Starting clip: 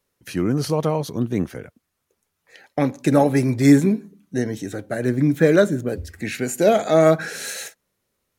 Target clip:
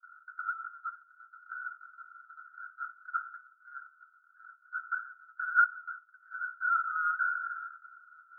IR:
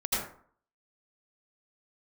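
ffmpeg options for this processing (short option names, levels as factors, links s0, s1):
-af "aeval=exprs='val(0)+0.5*0.0335*sgn(val(0))':c=same,asuperpass=centerf=1400:order=8:qfactor=7.5,agate=range=0.0224:threshold=0.00501:ratio=3:detection=peak,volume=2.24"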